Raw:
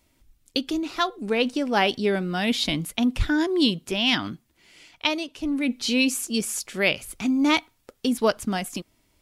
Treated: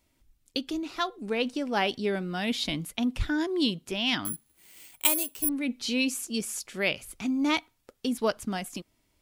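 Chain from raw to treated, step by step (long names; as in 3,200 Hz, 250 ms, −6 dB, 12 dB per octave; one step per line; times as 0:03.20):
0:04.25–0:05.49: bad sample-rate conversion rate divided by 4×, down none, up zero stuff
level −5.5 dB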